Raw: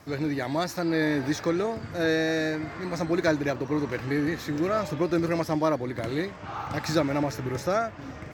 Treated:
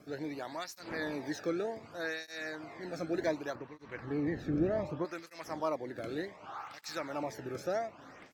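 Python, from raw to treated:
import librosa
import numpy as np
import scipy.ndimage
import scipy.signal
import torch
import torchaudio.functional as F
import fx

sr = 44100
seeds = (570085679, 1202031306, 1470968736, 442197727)

y = fx.dmg_wind(x, sr, seeds[0], corner_hz=260.0, level_db=-37.0)
y = fx.riaa(y, sr, side='playback', at=(3.55, 5.05))
y = fx.flanger_cancel(y, sr, hz=0.66, depth_ms=1.1)
y = y * 10.0 ** (-7.0 / 20.0)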